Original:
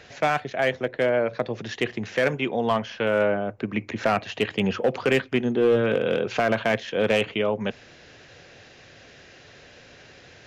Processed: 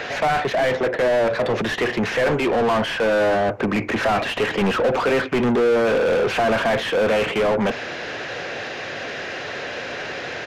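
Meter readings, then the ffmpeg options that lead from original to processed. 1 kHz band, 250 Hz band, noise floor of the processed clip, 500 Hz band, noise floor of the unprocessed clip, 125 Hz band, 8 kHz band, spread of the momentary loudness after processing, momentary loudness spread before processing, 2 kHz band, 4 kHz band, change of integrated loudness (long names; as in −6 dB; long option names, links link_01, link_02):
+6.0 dB, +3.5 dB, −31 dBFS, +4.5 dB, −50 dBFS, +2.5 dB, can't be measured, 10 LU, 7 LU, +5.5 dB, +5.0 dB, +3.5 dB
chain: -filter_complex "[0:a]asplit=2[link_01][link_02];[link_02]highpass=frequency=720:poles=1,volume=33dB,asoftclip=type=tanh:threshold=-11.5dB[link_03];[link_01][link_03]amix=inputs=2:normalize=0,lowpass=frequency=1300:poles=1,volume=-6dB,aresample=32000,aresample=44100"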